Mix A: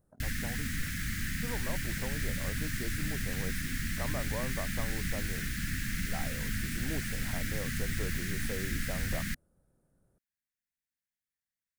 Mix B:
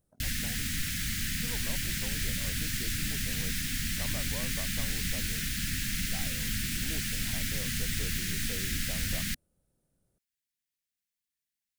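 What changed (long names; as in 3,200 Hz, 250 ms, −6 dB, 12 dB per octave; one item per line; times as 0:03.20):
speech −5.0 dB
master: add high shelf with overshoot 2,300 Hz +6.5 dB, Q 1.5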